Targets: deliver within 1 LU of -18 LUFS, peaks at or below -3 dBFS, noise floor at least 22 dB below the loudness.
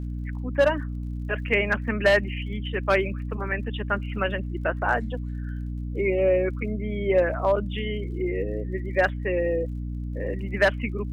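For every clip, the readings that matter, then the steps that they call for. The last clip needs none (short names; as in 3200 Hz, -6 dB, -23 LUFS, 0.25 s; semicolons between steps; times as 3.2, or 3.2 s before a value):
ticks 43/s; hum 60 Hz; harmonics up to 300 Hz; hum level -28 dBFS; loudness -26.0 LUFS; peak -10.0 dBFS; loudness target -18.0 LUFS
-> de-click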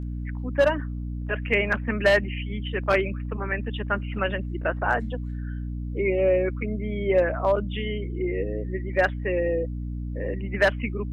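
ticks 0.18/s; hum 60 Hz; harmonics up to 300 Hz; hum level -29 dBFS
-> de-hum 60 Hz, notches 5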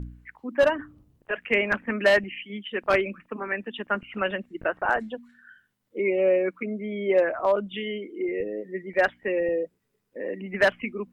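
hum none; loudness -26.5 LUFS; peak -9.0 dBFS; loudness target -18.0 LUFS
-> gain +8.5 dB; limiter -3 dBFS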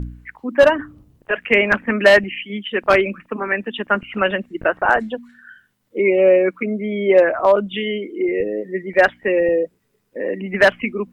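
loudness -18.0 LUFS; peak -3.0 dBFS; noise floor -65 dBFS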